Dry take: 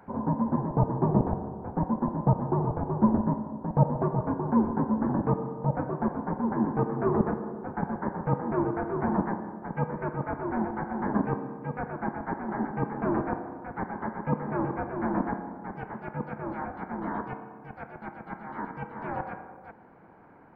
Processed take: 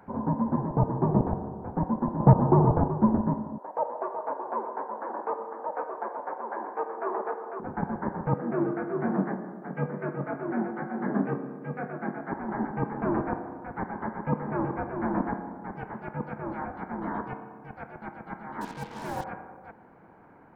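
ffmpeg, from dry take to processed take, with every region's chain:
-filter_complex "[0:a]asettb=1/sr,asplit=3[s0][s1][s2];[s0]atrim=end=2.204[s3];[s1]atrim=start=2.2:end=2.88,asetpts=PTS-STARTPTS,afade=t=in:d=0.004:c=qsin,afade=t=out:st=0.676:d=0.004:c=qsin,lowpass=1700,acontrast=87[s4];[s2]atrim=start=2.876[s5];[s3][s4]acrossfade=d=0.004:c1=hsin:c2=qsin[s6];[s6][s5]acrossfade=d=0.004:c1=qsin:c2=hsin,asettb=1/sr,asplit=3[s7][s8][s9];[s7]atrim=end=3.584[s10];[s8]atrim=start=3.58:end=7.6,asetpts=PTS-STARTPTS,afade=t=in:d=0.004:c=qsin,afade=t=out:st=4.016:d=0.004:c=qsin,highpass=f=470:w=0.5412,highpass=f=470:w=1.3066,aecho=1:1:499:0.501,atrim=end_sample=177282[s11];[s9]atrim=start=7.596[s12];[s10][s11]acrossfade=d=0.004:c1=hsin:c2=qsin[s13];[s13][s12]acrossfade=d=0.004:c1=qsin:c2=hsin,asettb=1/sr,asplit=3[s14][s15][s16];[s14]atrim=end=8.344[s17];[s15]atrim=start=8.34:end=12.32,asetpts=PTS-STARTPTS,afade=t=in:d=0.004:c=qsin,afade=t=out:st=3.976:d=0.004:c=qsin,highpass=f=150:w=0.5412,highpass=f=150:w=1.3066,equalizer=f=940:t=o:w=0.31:g=-10,asplit=2[s18][s19];[s19]adelay=21,volume=0.473[s20];[s18][s20]amix=inputs=2:normalize=0,atrim=end_sample=175518[s21];[s16]atrim=start=12.316[s22];[s17][s21]acrossfade=d=0.004:c1=hsin:c2=qsin[s23];[s23][s22]acrossfade=d=0.004:c1=qsin:c2=hsin,asettb=1/sr,asplit=3[s24][s25][s26];[s24]atrim=end=18.614[s27];[s25]atrim=start=18.61:end=19.24,asetpts=PTS-STARTPTS,afade=t=in:d=0.004:c=qsin,afade=t=out:st=0.626:d=0.004:c=qsin,equalizer=f=1300:w=4.5:g=-5,acrusher=bits=6:mix=0:aa=0.5[s28];[s26]atrim=start=19.236[s29];[s27][s28]acrossfade=d=0.004:c1=hsin:c2=qsin[s30];[s30][s29]acrossfade=d=0.004:c1=qsin:c2=hsin"

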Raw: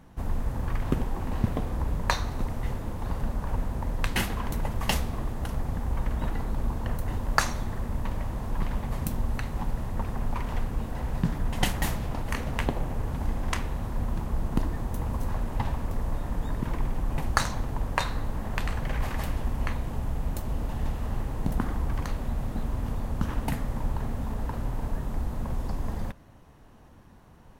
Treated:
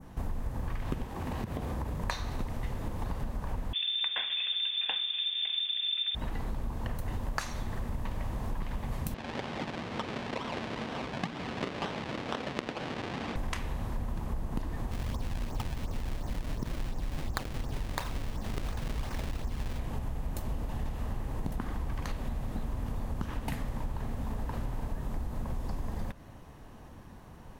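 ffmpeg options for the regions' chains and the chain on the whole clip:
-filter_complex "[0:a]asettb=1/sr,asplit=3[s0][s1][s2];[s0]atrim=end=1.054[s3];[s1]atrim=start=1.05:end=2.04,asetpts=PTS-STARTPTS,afade=t=in:d=0.004:c=qsin,afade=t=out:st=0.986:d=0.004:c=qsin,highpass=60,acompressor=threshold=0.0251:ratio=4:attack=3.2:release=140:knee=1:detection=peak[s4];[s2]atrim=start=2.036[s5];[s3][s4]acrossfade=d=0.004:c1=hsin:c2=qsin[s6];[s6][s5]acrossfade=d=0.004:c1=qsin:c2=hsin,asettb=1/sr,asplit=3[s7][s8][s9];[s7]atrim=end=3.734[s10];[s8]atrim=start=3.73:end=6.15,asetpts=PTS-STARTPTS,afade=t=in:d=0.004:c=qsin,afade=t=out:st=2.416:d=0.004:c=qsin,equalizer=f=600:w=1.9:g=-6,lowpass=f=3100:t=q:w=0.5098,lowpass=f=3100:t=q:w=0.6013,lowpass=f=3100:t=q:w=0.9,lowpass=f=3100:t=q:w=2.563,afreqshift=-3600[s11];[s9]atrim=start=6.146[s12];[s10][s11]acrossfade=d=0.004:c1=hsin:c2=qsin[s13];[s13][s12]acrossfade=d=0.004:c1=qsin:c2=hsin,asettb=1/sr,asplit=3[s14][s15][s16];[s14]atrim=end=9.144[s17];[s15]atrim=start=9.14:end=13.36,asetpts=PTS-STARTPTS,afade=t=in:d=0.004:c=qsin,afade=t=out:st=4.216:d=0.004:c=qsin,acrusher=samples=37:mix=1:aa=0.000001:lfo=1:lforange=37:lforate=2.1,highpass=220,lowpass=4000[s18];[s16]atrim=start=13.356[s19];[s17][s18]acrossfade=d=0.004:c1=hsin:c2=qsin[s20];[s20][s19]acrossfade=d=0.004:c1=qsin:c2=hsin,asettb=1/sr,asplit=3[s21][s22][s23];[s21]atrim=end=14.914[s24];[s22]atrim=start=14.91:end=19.79,asetpts=PTS-STARTPTS,afade=t=in:d=0.004:c=qsin,afade=t=out:st=4.876:d=0.004:c=qsin,lowpass=f=1500:p=1,acrusher=samples=30:mix=1:aa=0.000001:lfo=1:lforange=48:lforate=2.8[s25];[s23]atrim=start=19.786[s26];[s24][s25]acrossfade=d=0.004:c1=hsin:c2=qsin[s27];[s27][s26]acrossfade=d=0.004:c1=qsin:c2=hsin,bandreject=f=1400:w=27,adynamicequalizer=threshold=0.00501:dfrequency=3100:dqfactor=0.71:tfrequency=3100:tqfactor=0.71:attack=5:release=100:ratio=0.375:range=2:mode=boostabove:tftype=bell,acompressor=threshold=0.02:ratio=6,volume=1.5"

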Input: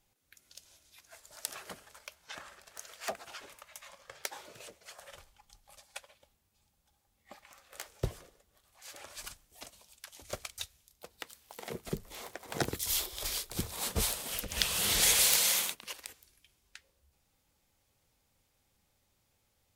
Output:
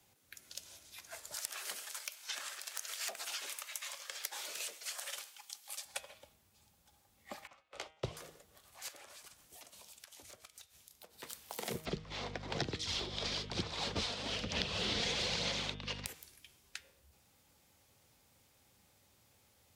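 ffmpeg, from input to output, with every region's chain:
-filter_complex "[0:a]asettb=1/sr,asplit=3[s0][s1][s2];[s0]atrim=end=1.344[s3];[s1]atrim=start=1.34:end=5.85,asetpts=PTS-STARTPTS,afade=t=in:d=0.004:c=qsin,afade=t=out:st=4.506:d=0.004:c=qsin,highpass=320,tiltshelf=f=1300:g=-9,acompressor=threshold=0.00708:ratio=2:attack=3.2:release=140:knee=1:detection=peak[s4];[s2]atrim=start=5.846[s5];[s3][s4]acrossfade=d=0.004:c1=hsin:c2=qsin[s6];[s6][s5]acrossfade=d=0.004:c1=qsin:c2=hsin,asettb=1/sr,asplit=3[s7][s8][s9];[s7]atrim=end=7.474[s10];[s8]atrim=start=7.47:end=8.17,asetpts=PTS-STARTPTS,afade=t=in:d=0.004:c=qsin,afade=t=out:st=0.696:d=0.004:c=qsin,lowpass=3600,equalizer=f=1700:t=o:w=0.26:g=-11.5,agate=range=0.0224:threshold=0.002:ratio=3:release=100:detection=peak[s11];[s9]atrim=start=8.166[s12];[s10][s11]acrossfade=d=0.004:c1=hsin:c2=qsin[s13];[s13][s12]acrossfade=d=0.004:c1=qsin:c2=hsin,asettb=1/sr,asplit=3[s14][s15][s16];[s14]atrim=end=8.884[s17];[s15]atrim=start=8.88:end=11.23,asetpts=PTS-STARTPTS,afade=t=in:d=0.004:c=qsin,afade=t=out:st=2.346:d=0.004:c=qsin,lowshelf=f=130:g=-6.5,acompressor=threshold=0.00141:ratio=16:attack=3.2:release=140:knee=1:detection=peak[s18];[s16]atrim=start=11.226[s19];[s17][s18]acrossfade=d=0.004:c1=hsin:c2=qsin[s20];[s20][s19]acrossfade=d=0.004:c1=qsin:c2=hsin,asettb=1/sr,asplit=3[s21][s22][s23];[s21]atrim=end=11.854[s24];[s22]atrim=start=11.85:end=16.06,asetpts=PTS-STARTPTS,afade=t=in:d=0.004:c=qsin,afade=t=out:st=4.206:d=0.004:c=qsin,lowpass=f=4800:w=0.5412,lowpass=f=4800:w=1.3066,aphaser=in_gain=1:out_gain=1:delay=4.3:decay=0.33:speed=1.1:type=sinusoidal,aeval=exprs='val(0)+0.00355*(sin(2*PI*50*n/s)+sin(2*PI*2*50*n/s)/2+sin(2*PI*3*50*n/s)/3+sin(2*PI*4*50*n/s)/4+sin(2*PI*5*50*n/s)/5)':c=same[s25];[s23]atrim=start=16.056[s26];[s24][s25]acrossfade=d=0.004:c1=hsin:c2=qsin[s27];[s27][s26]acrossfade=d=0.004:c1=qsin:c2=hsin,highpass=74,bandreject=f=157.9:t=h:w=4,bandreject=f=315.8:t=h:w=4,bandreject=f=473.7:t=h:w=4,bandreject=f=631.6:t=h:w=4,bandreject=f=789.5:t=h:w=4,bandreject=f=947.4:t=h:w=4,bandreject=f=1105.3:t=h:w=4,bandreject=f=1263.2:t=h:w=4,bandreject=f=1421.1:t=h:w=4,bandreject=f=1579:t=h:w=4,bandreject=f=1736.9:t=h:w=4,bandreject=f=1894.8:t=h:w=4,bandreject=f=2052.7:t=h:w=4,bandreject=f=2210.6:t=h:w=4,bandreject=f=2368.5:t=h:w=4,bandreject=f=2526.4:t=h:w=4,bandreject=f=2684.3:t=h:w=4,bandreject=f=2842.2:t=h:w=4,bandreject=f=3000.1:t=h:w=4,bandreject=f=3158:t=h:w=4,bandreject=f=3315.9:t=h:w=4,bandreject=f=3473.8:t=h:w=4,bandreject=f=3631.7:t=h:w=4,acrossover=split=98|270|700|2700[s28][s29][s30][s31][s32];[s28]acompressor=threshold=0.00158:ratio=4[s33];[s29]acompressor=threshold=0.00282:ratio=4[s34];[s30]acompressor=threshold=0.00282:ratio=4[s35];[s31]acompressor=threshold=0.002:ratio=4[s36];[s32]acompressor=threshold=0.00562:ratio=4[s37];[s33][s34][s35][s36][s37]amix=inputs=5:normalize=0,volume=2.11"

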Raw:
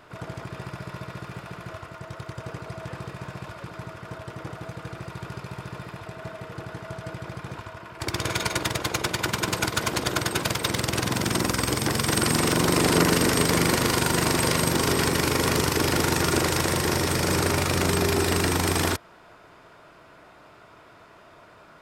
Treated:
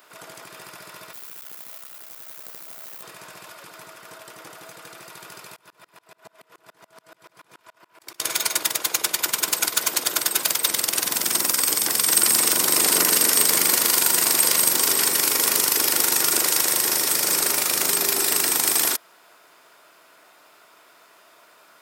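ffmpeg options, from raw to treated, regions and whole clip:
-filter_complex "[0:a]asettb=1/sr,asplit=3[s0][s1][s2];[s0]atrim=end=1.134[s3];[s1]atrim=start=1.13:end=3.03,asetpts=PTS-STARTPTS,afade=t=in:d=0.004:c=qsin,afade=t=out:st=1.896:d=0.004:c=qsin,tremolo=f=65:d=0.75,acrusher=bits=5:dc=4:mix=0:aa=0.000001[s4];[s2]atrim=start=3.026[s5];[s3][s4]acrossfade=d=0.004:c1=hsin:c2=qsin[s6];[s6][s5]acrossfade=d=0.004:c1=qsin:c2=hsin,asettb=1/sr,asplit=3[s7][s8][s9];[s7]atrim=end=5.564[s10];[s8]atrim=start=5.56:end=8.2,asetpts=PTS-STARTPTS,afade=t=in:d=0.004:c=qsin,afade=t=out:st=2.636:d=0.004:c=qsin,highshelf=f=4100:g=-4.5,aeval=exprs='val(0)+0.00398*sin(2*PI*990*n/s)':c=same,aeval=exprs='val(0)*pow(10,-32*if(lt(mod(-7*n/s,1),2*abs(-7)/1000),1-mod(-7*n/s,1)/(2*abs(-7)/1000),(mod(-7*n/s,1)-2*abs(-7)/1000)/(1-2*abs(-7)/1000))/20)':c=same[s11];[s9]atrim=start=8.196[s12];[s10][s11]acrossfade=d=0.004:c1=hsin:c2=qsin[s13];[s13][s12]acrossfade=d=0.004:c1=qsin:c2=hsin,highpass=180,aemphasis=mode=production:type=riaa,volume=0.708"

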